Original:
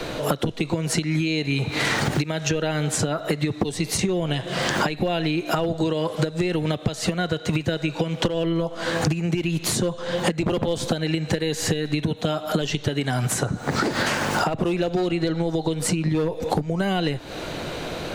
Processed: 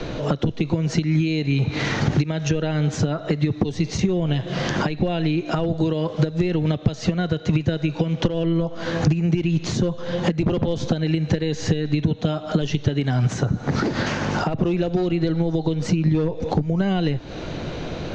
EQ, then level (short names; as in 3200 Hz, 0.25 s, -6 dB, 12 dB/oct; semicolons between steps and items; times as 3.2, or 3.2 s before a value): elliptic low-pass 6400 Hz, stop band 60 dB; low shelf 360 Hz +11 dB; -3.5 dB